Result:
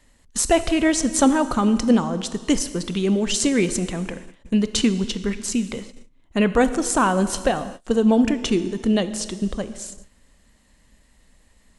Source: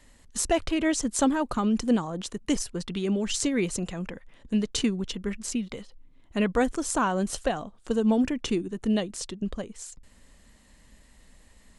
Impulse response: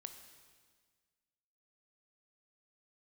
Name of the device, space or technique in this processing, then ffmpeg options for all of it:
keyed gated reverb: -filter_complex "[0:a]asplit=3[a][b][c];[1:a]atrim=start_sample=2205[d];[b][d]afir=irnorm=-1:irlink=0[e];[c]apad=whole_len=519747[f];[e][f]sidechaingate=range=-33dB:threshold=-46dB:ratio=16:detection=peak,volume=9dB[g];[a][g]amix=inputs=2:normalize=0,volume=-1.5dB"

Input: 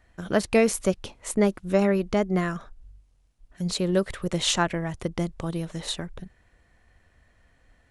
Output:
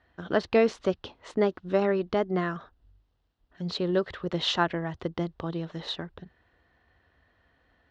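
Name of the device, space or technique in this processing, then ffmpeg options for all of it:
guitar cabinet: -af "highpass=86,equalizer=f=120:t=q:w=4:g=-9,equalizer=f=200:t=q:w=4:g=-7,equalizer=f=570:t=q:w=4:g=-3,equalizer=f=2.3k:t=q:w=4:g=-8,lowpass=f=4.2k:w=0.5412,lowpass=f=4.2k:w=1.3066"

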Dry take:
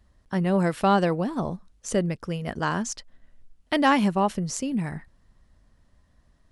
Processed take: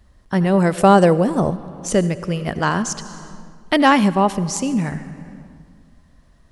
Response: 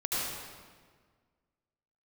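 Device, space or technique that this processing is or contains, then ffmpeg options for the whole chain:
compressed reverb return: -filter_complex "[0:a]asplit=2[a][b];[1:a]atrim=start_sample=2205[c];[b][c]afir=irnorm=-1:irlink=0,acompressor=threshold=-23dB:ratio=6,volume=-12.5dB[d];[a][d]amix=inputs=2:normalize=0,asettb=1/sr,asplit=3[e][f][g];[e]atrim=end=0.784[h];[f]atrim=start=0.78:end=1.51,asetpts=PTS-STARTPTS,afade=t=in:d=0.004:c=qsin,afade=t=out:st=0.726:d=0.004:c=qsin,equalizer=f=125:t=o:w=1:g=5,equalizer=f=500:t=o:w=1:g=5,equalizer=f=4k:t=o:w=1:g=-5,equalizer=f=8k:t=o:w=1:g=11[i];[g]atrim=start=1.506[j];[h][i]acrossfade=d=0.004:c1=hsin:c2=qsin[k];[k][j]acrossfade=d=0.004:c1=qsin:c2=hsin,volume=6dB"

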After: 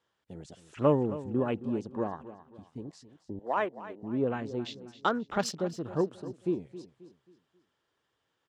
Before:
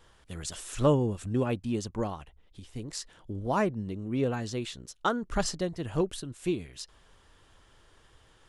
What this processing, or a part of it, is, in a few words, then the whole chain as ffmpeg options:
over-cleaned archive recording: -filter_complex "[0:a]highpass=160,lowpass=6.8k,afwtdn=0.00708,asettb=1/sr,asplit=3[a][b][c];[a]atrim=end=3.394[d];[b]atrim=start=3.39:end=4.03,asetpts=PTS-STARTPTS,afade=t=in:d=0.004:c=qsin,afade=t=out:st=0.636:d=0.004:c=qsin,highpass=480[e];[c]atrim=start=4.026[f];[d][e]acrossfade=d=0.004:c1=hsin:c2=qsin[g];[g][f]acrossfade=d=0.004:c1=qsin:c2=hsin,aecho=1:1:268|536|804|1072:0.178|0.0694|0.027|0.0105"

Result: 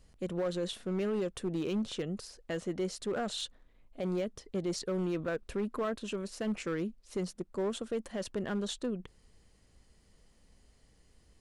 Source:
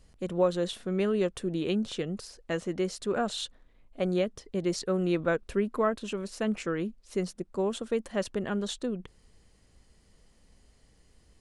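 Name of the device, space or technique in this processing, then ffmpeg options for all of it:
limiter into clipper: -af "alimiter=limit=-21dB:level=0:latency=1:release=33,asoftclip=type=hard:threshold=-25dB,volume=-2.5dB"

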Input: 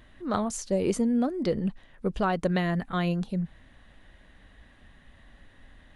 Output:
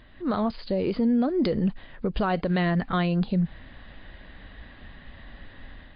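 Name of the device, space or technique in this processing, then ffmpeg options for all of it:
low-bitrate web radio: -af "dynaudnorm=f=110:g=5:m=7dB,alimiter=limit=-19dB:level=0:latency=1:release=141,volume=2.5dB" -ar 11025 -c:a libmp3lame -b:a 40k

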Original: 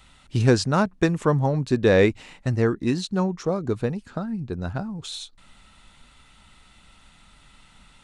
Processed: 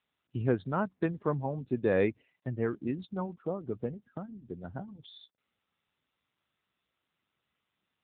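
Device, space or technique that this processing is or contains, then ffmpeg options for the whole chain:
mobile call with aggressive noise cancelling: -af "highpass=f=120:p=1,afftdn=nr=24:nf=-36,volume=-8.5dB" -ar 8000 -c:a libopencore_amrnb -b:a 7950

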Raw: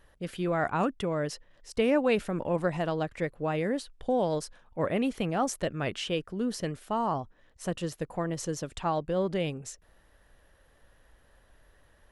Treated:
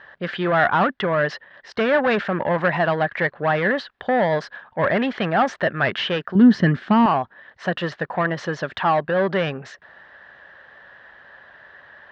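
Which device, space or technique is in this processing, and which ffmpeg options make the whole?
overdrive pedal into a guitar cabinet: -filter_complex "[0:a]asplit=2[a][b];[b]highpass=f=720:p=1,volume=19dB,asoftclip=type=tanh:threshold=-14.5dB[c];[a][c]amix=inputs=2:normalize=0,lowpass=f=2k:p=1,volume=-6dB,highpass=100,equalizer=f=300:t=q:w=4:g=-7,equalizer=f=470:t=q:w=4:g=-6,equalizer=f=1.7k:t=q:w=4:g=9,equalizer=f=2.5k:t=q:w=4:g=-4,lowpass=f=4.2k:w=0.5412,lowpass=f=4.2k:w=1.3066,asettb=1/sr,asplit=3[d][e][f];[d]atrim=end=6.354[g];[e]atrim=start=6.35:end=7.06,asetpts=PTS-STARTPTS,afade=t=in:d=0.004:c=qsin,afade=t=out:st=0.706:d=0.004:c=qsin,lowshelf=f=380:t=q:w=1.5:g=10.5[h];[f]atrim=start=7.056[i];[g][h]acrossfade=d=0.004:c1=hsin:c2=qsin[j];[j][i]acrossfade=d=0.004:c1=qsin:c2=hsin,volume=6dB"

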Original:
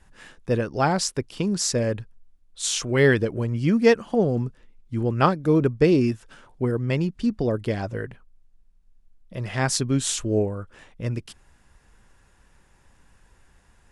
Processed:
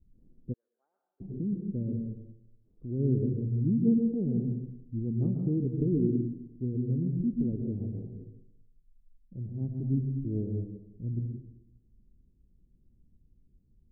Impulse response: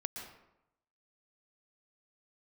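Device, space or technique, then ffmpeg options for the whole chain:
next room: -filter_complex "[0:a]lowpass=f=310:w=0.5412,lowpass=f=310:w=1.3066[a];[1:a]atrim=start_sample=2205[b];[a][b]afir=irnorm=-1:irlink=0,asplit=3[c][d][e];[c]afade=t=out:st=0.52:d=0.02[f];[d]highpass=f=1.4k:w=0.5412,highpass=f=1.4k:w=1.3066,afade=t=in:st=0.52:d=0.02,afade=t=out:st=1.2:d=0.02[g];[e]afade=t=in:st=1.2:d=0.02[h];[f][g][h]amix=inputs=3:normalize=0,volume=-4.5dB"

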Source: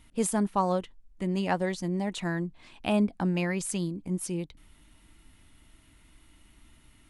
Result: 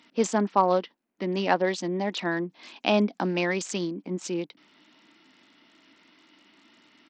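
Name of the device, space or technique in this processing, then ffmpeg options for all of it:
Bluetooth headset: -filter_complex "[0:a]asettb=1/sr,asplit=3[a][b][c];[a]atrim=end=2.404[d];[b]atrim=start=2.4:end=3.37,asetpts=PTS-STARTPTS,afade=t=in:d=0.004:c=qsin,afade=t=out:st=0.966:d=0.004:c=qsin,equalizer=f=9.3k:t=o:w=1.4:g=11.5[e];[c]atrim=start=3.366[f];[d][e]acrossfade=d=0.004:c1=hsin:c2=qsin[g];[g][f]acrossfade=d=0.004:c1=qsin:c2=hsin,highpass=f=230:w=0.5412,highpass=f=230:w=1.3066,aresample=16000,aresample=44100,volume=5.5dB" -ar 44100 -c:a sbc -b:a 64k

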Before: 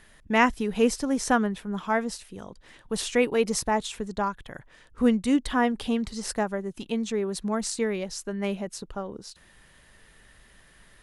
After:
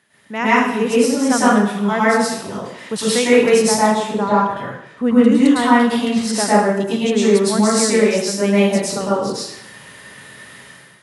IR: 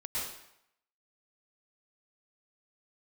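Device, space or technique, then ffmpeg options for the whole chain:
far laptop microphone: -filter_complex "[0:a]asettb=1/sr,asplit=3[a][b][c];[a]atrim=end=3.724[d];[b]atrim=start=3.72:end=5.32,asetpts=PTS-STARTPTS,afade=t=in:d=0.004:c=qsin,afade=t=out:st=1.596:d=0.004:c=qsin,highshelf=f=3k:g=-10[e];[c]atrim=start=5.316[f];[d][e]acrossfade=d=0.004:c1=hsin:c2=qsin[g];[g][f]acrossfade=d=0.004:c1=qsin:c2=hsin[h];[1:a]atrim=start_sample=2205[i];[h][i]afir=irnorm=-1:irlink=0,highpass=f=120:w=0.5412,highpass=f=120:w=1.3066,dynaudnorm=f=110:g=7:m=14dB"

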